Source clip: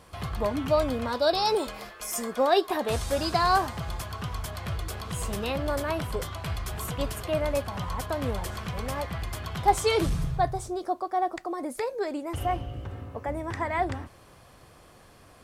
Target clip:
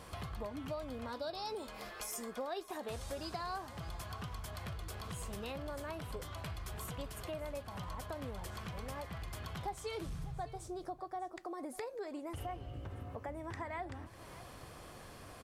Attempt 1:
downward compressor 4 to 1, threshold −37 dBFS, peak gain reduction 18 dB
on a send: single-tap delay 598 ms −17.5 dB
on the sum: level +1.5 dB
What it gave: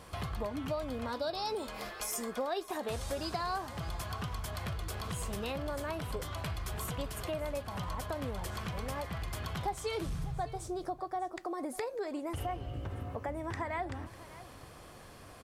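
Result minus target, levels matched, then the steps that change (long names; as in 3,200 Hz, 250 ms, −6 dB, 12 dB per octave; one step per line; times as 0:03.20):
downward compressor: peak gain reduction −5.5 dB
change: downward compressor 4 to 1, threshold −44.5 dBFS, peak gain reduction 24 dB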